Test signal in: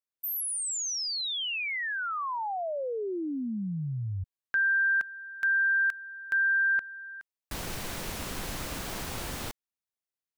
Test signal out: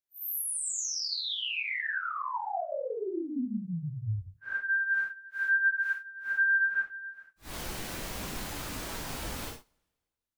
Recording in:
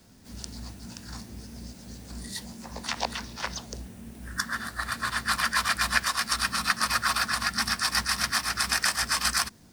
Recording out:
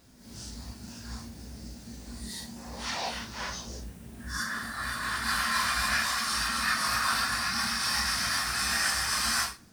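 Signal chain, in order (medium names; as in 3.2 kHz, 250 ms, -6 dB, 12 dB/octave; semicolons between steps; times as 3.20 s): phase randomisation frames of 200 ms; two-slope reverb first 0.4 s, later 1.6 s, from -18 dB, DRR 19.5 dB; trim -1.5 dB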